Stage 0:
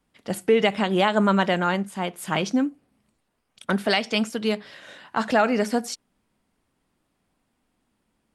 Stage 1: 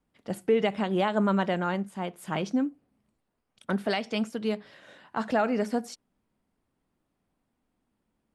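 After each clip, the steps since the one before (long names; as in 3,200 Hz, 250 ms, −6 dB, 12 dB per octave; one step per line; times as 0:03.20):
tilt shelving filter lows +3.5 dB, about 1,400 Hz
level −7.5 dB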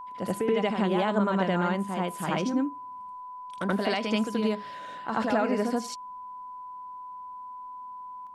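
downward compressor 2.5 to 1, threshold −30 dBFS, peak gain reduction 8 dB
steady tone 1,000 Hz −47 dBFS
backwards echo 79 ms −4 dB
level +4.5 dB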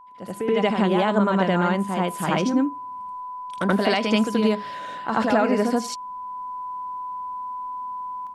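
automatic gain control gain up to 16 dB
level −6.5 dB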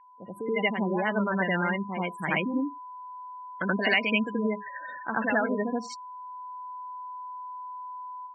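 gate on every frequency bin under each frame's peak −20 dB strong
flat-topped bell 2,100 Hz +13.5 dB 1 octave
level −7.5 dB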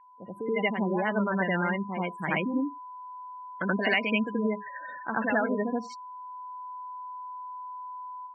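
low-pass filter 2,700 Hz 6 dB per octave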